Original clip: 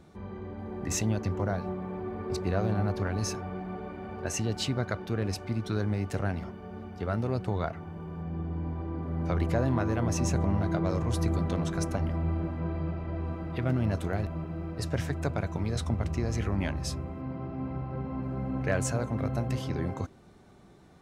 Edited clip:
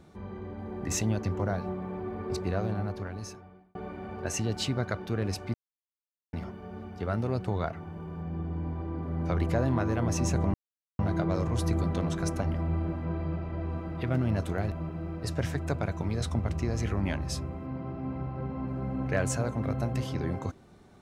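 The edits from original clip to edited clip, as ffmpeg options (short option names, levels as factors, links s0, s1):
-filter_complex "[0:a]asplit=5[s0][s1][s2][s3][s4];[s0]atrim=end=3.75,asetpts=PTS-STARTPTS,afade=t=out:st=2.29:d=1.46[s5];[s1]atrim=start=3.75:end=5.54,asetpts=PTS-STARTPTS,afade=t=in:d=0.004:c=hsin,afade=t=out:st=1.786:d=0.004:c=hsin[s6];[s2]atrim=start=5.54:end=6.33,asetpts=PTS-STARTPTS,volume=0[s7];[s3]atrim=start=6.33:end=10.54,asetpts=PTS-STARTPTS,afade=t=in:d=0.004:c=hsin,afade=t=out:st=4.206:d=0.004:c=hsin,apad=pad_dur=0.45[s8];[s4]atrim=start=10.54,asetpts=PTS-STARTPTS,afade=t=in:d=0.004:c=hsin[s9];[s5][s6][s7][s8][s9]concat=n=5:v=0:a=1"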